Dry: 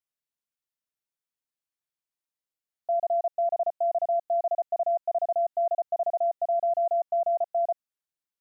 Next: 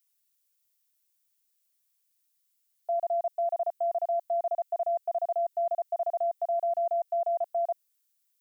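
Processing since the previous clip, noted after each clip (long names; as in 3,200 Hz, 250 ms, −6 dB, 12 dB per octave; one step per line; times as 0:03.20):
spectral tilt +5 dB per octave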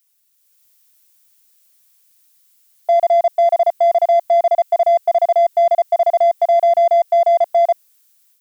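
automatic gain control gain up to 7.5 dB
in parallel at −5 dB: soft clipping −30 dBFS, distortion −9 dB
on the sum: level +6.5 dB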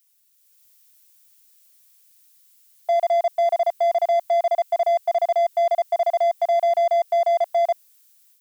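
high-pass filter 1,200 Hz 6 dB per octave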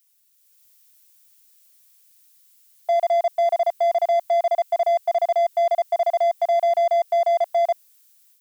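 no processing that can be heard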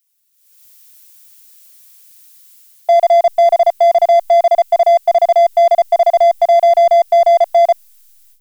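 in parallel at −7 dB: slack as between gear wheels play −26.5 dBFS
on the sum: automatic gain control gain up to 15 dB
level −3 dB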